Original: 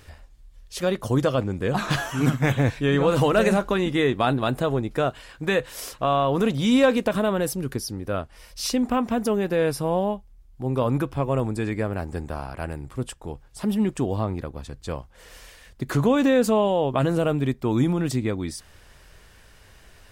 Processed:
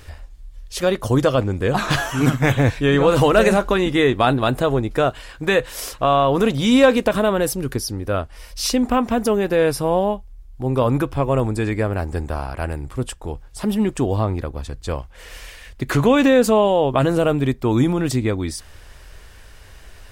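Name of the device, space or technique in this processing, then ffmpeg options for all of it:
low shelf boost with a cut just above: -filter_complex "[0:a]asettb=1/sr,asplit=3[s0][s1][s2];[s0]atrim=end=14.984[s3];[s1]atrim=start=14.98:end=16.28,asetpts=PTS-STARTPTS,afade=t=in:d=0.004:c=qsin,afade=t=out:st=1.296:d=0.004:c=qsin,equalizer=f=2400:t=o:w=1:g=5[s4];[s2]atrim=start=16.276[s5];[s3][s4]acrossfade=d=0.004:c1=hsin:c2=qsin[s6];[s6][s5]acrossfade=d=0.004:c1=qsin:c2=hsin,lowshelf=f=90:g=6,equalizer=f=170:t=o:w=0.98:g=-5,volume=1.88"

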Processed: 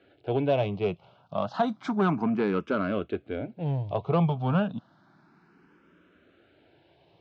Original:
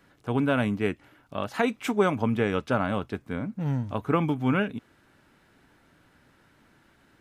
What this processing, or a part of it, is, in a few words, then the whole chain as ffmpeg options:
barber-pole phaser into a guitar amplifier: -filter_complex "[0:a]asplit=2[s0][s1];[s1]afreqshift=0.31[s2];[s0][s2]amix=inputs=2:normalize=1,asoftclip=type=tanh:threshold=0.0891,highpass=100,equalizer=f=170:t=q:w=4:g=6,equalizer=f=250:t=q:w=4:g=-3,equalizer=f=370:t=q:w=4:g=4,equalizer=f=670:t=q:w=4:g=6,equalizer=f=1900:t=q:w=4:g=-10,lowpass=f=4400:w=0.5412,lowpass=f=4400:w=1.3066,volume=1.41"

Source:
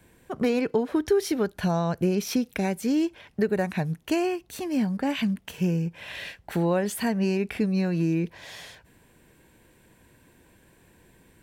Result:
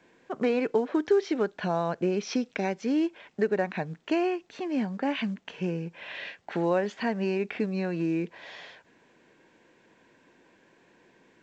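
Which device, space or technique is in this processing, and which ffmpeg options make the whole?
telephone: -filter_complex "[0:a]asettb=1/sr,asplit=3[s0][s1][s2];[s0]atrim=end=2.234[s3];[s1]atrim=start=2.23:end=2.85,asetpts=PTS-STARTPTS,afade=t=in:d=0.004:c=qsin,afade=t=out:st=0.616:d=0.004:c=qsin,equalizer=f=5600:w=2.3:g=7.5[s4];[s2]atrim=start=2.846[s5];[s3][s4]acrossfade=d=0.004:c1=hsin:c2=qsin[s6];[s6][s5]acrossfade=d=0.004:c1=qsin:c2=hsin,highpass=260,lowpass=3200" -ar 16000 -c:a pcm_alaw

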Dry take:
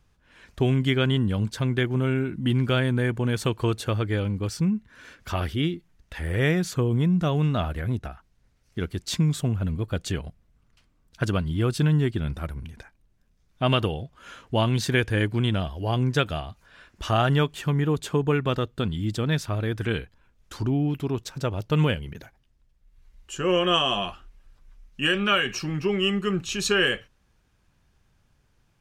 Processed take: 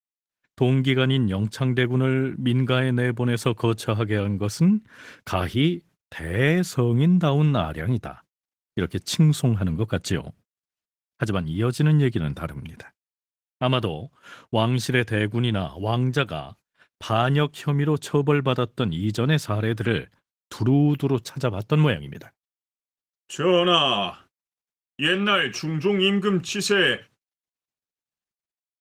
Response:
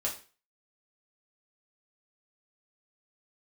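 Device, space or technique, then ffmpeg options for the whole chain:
video call: -af "highpass=f=100:w=0.5412,highpass=f=100:w=1.3066,dynaudnorm=f=310:g=3:m=3.35,agate=range=0.0112:threshold=0.00708:ratio=16:detection=peak,volume=0.596" -ar 48000 -c:a libopus -b:a 20k

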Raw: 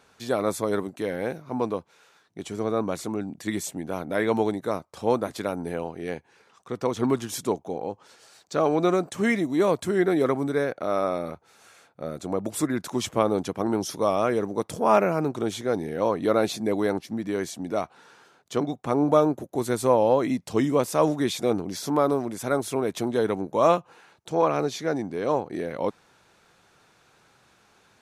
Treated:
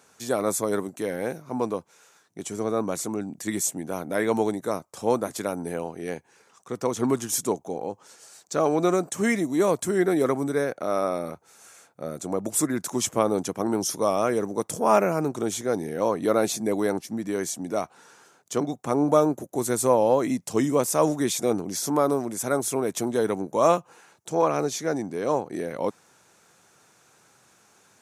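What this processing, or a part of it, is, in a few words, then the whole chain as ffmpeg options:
budget condenser microphone: -af "highpass=100,highshelf=f=5200:t=q:w=1.5:g=7"

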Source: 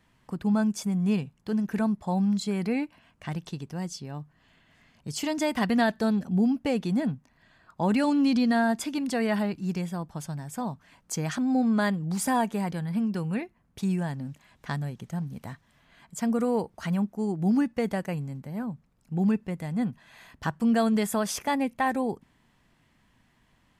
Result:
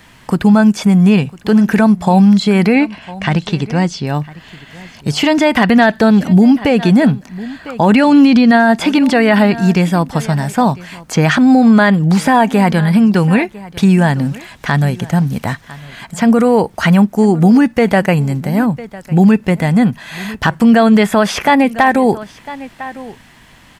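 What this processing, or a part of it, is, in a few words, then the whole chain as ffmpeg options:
mastering chain: -filter_complex "[0:a]acrossover=split=3500[s0][s1];[s1]acompressor=threshold=0.00158:ratio=4:attack=1:release=60[s2];[s0][s2]amix=inputs=2:normalize=0,asettb=1/sr,asplit=3[s3][s4][s5];[s3]atrim=end=2.754[s6];[s4]atrim=start=2.75:end=4.07,asetpts=PTS-STARTPTS,afade=t=in:d=0.004:c=qsin,afade=t=out:st=1.316:d=0.004:c=qsin,lowpass=6500[s7];[s5]atrim=start=4.066[s8];[s6][s7]acrossfade=d=0.004:c1=hsin:c2=qsin[s9];[s9][s8]acrossfade=d=0.004:c1=qsin:c2=hsin,equalizer=f=1100:t=o:w=0.36:g=-2.5,aecho=1:1:1002:0.0794,acompressor=threshold=0.0355:ratio=1.5,tiltshelf=f=670:g=-3,asoftclip=type=hard:threshold=0.106,alimiter=level_in=14.1:limit=0.891:release=50:level=0:latency=1,volume=0.891"

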